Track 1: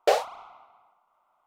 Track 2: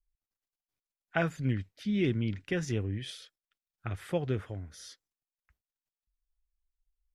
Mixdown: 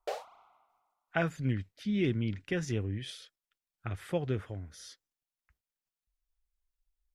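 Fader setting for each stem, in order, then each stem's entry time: -15.5, -1.0 dB; 0.00, 0.00 s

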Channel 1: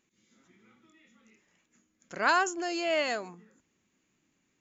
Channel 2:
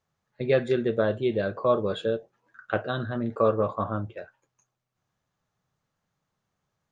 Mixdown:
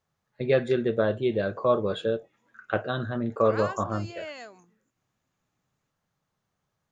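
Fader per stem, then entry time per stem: -11.0, 0.0 dB; 1.30, 0.00 s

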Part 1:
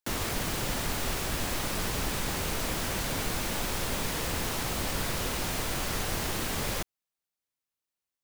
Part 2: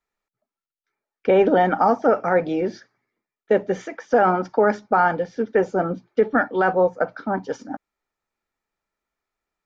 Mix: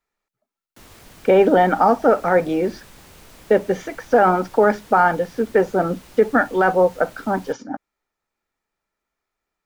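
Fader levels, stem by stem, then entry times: -14.5, +2.5 dB; 0.70, 0.00 s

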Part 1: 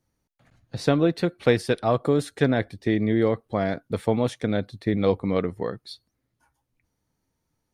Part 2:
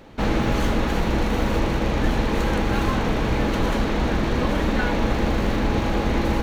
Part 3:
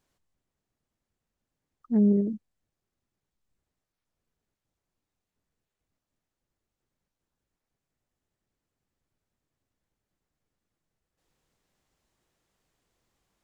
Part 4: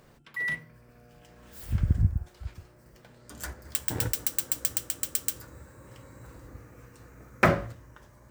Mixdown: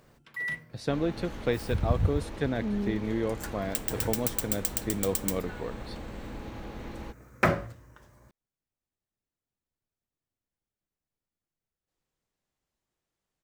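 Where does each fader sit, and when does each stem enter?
-8.5, -19.0, -9.5, -2.5 dB; 0.00, 0.70, 0.70, 0.00 s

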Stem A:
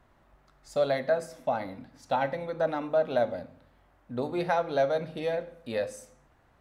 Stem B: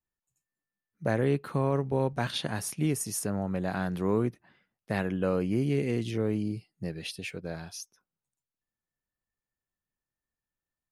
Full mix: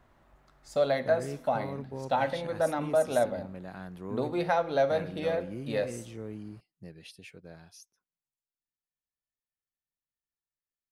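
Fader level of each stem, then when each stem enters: 0.0, -11.5 dB; 0.00, 0.00 s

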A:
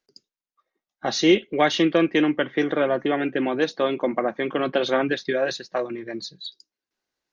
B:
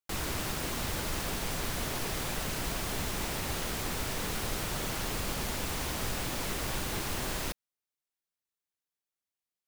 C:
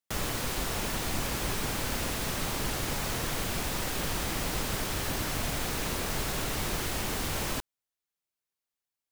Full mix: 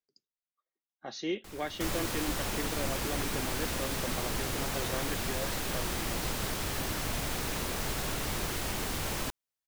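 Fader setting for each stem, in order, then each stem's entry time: -16.5, -14.5, -2.0 dB; 0.00, 1.35, 1.70 s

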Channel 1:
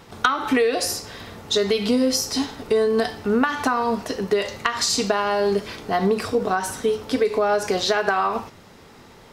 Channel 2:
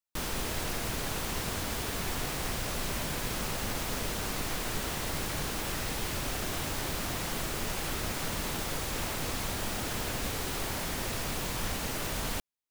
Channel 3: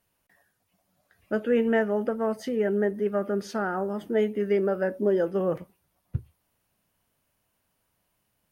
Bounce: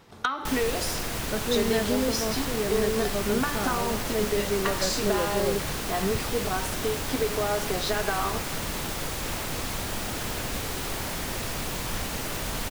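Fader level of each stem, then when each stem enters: -8.0, +2.5, -4.5 dB; 0.00, 0.30, 0.00 s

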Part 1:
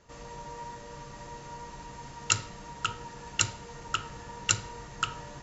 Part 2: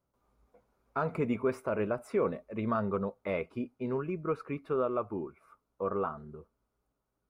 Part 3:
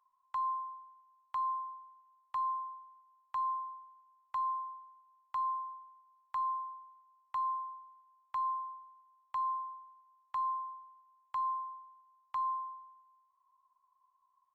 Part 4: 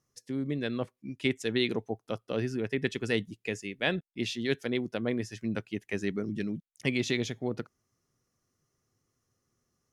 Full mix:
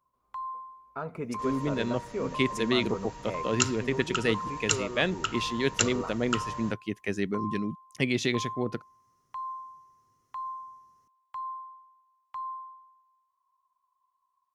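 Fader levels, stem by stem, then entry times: -0.5, -4.5, -2.5, +2.0 dB; 1.30, 0.00, 0.00, 1.15 s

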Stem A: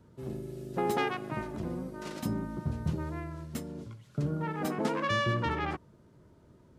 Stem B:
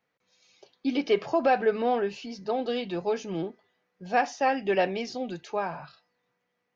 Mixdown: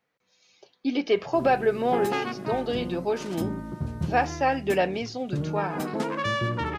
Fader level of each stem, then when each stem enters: +2.0, +1.0 dB; 1.15, 0.00 s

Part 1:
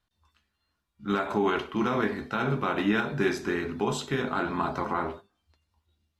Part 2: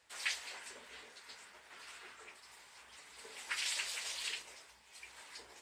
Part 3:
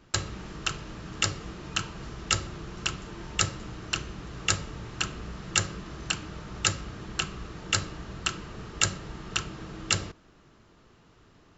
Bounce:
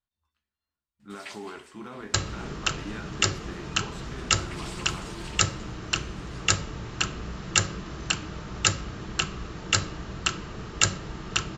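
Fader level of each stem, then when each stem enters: -14.0, -5.5, +3.0 dB; 0.00, 1.00, 2.00 s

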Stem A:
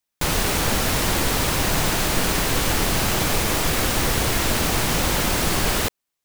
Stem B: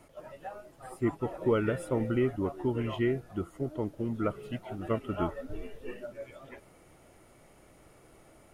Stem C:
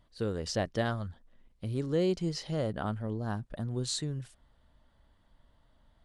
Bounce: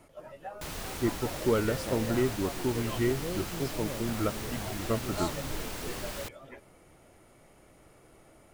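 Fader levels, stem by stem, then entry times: -17.5, 0.0, -8.5 dB; 0.40, 0.00, 1.30 s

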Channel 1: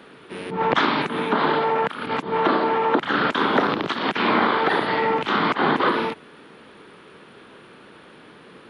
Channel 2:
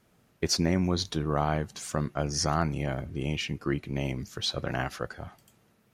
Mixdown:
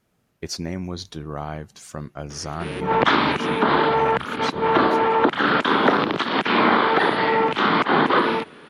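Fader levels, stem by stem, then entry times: +2.0, -3.5 dB; 2.30, 0.00 s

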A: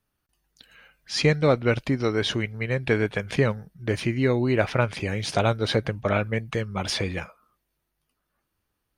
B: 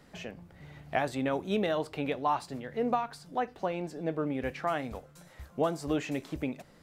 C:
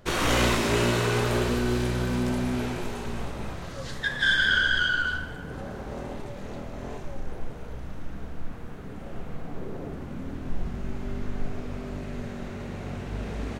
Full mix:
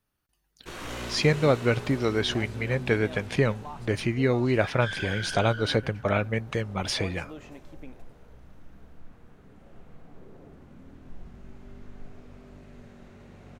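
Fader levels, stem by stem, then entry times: -1.5, -13.0, -13.5 dB; 0.00, 1.40, 0.60 s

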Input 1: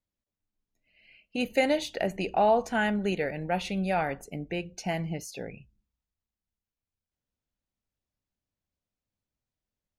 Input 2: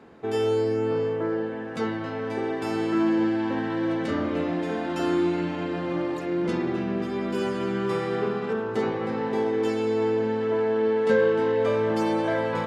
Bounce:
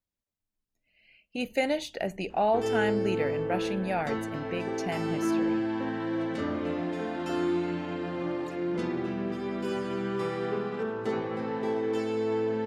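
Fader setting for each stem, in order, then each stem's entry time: -2.5, -4.5 dB; 0.00, 2.30 s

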